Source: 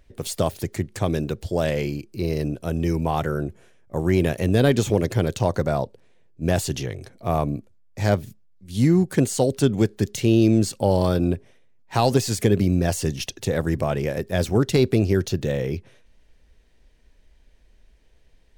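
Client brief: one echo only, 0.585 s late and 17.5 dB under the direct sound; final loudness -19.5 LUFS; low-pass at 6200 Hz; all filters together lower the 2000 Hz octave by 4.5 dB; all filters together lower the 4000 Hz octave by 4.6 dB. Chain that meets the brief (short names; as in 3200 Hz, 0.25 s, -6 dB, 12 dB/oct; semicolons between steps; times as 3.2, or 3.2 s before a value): LPF 6200 Hz; bell 2000 Hz -5 dB; bell 4000 Hz -3.5 dB; echo 0.585 s -17.5 dB; gain +3.5 dB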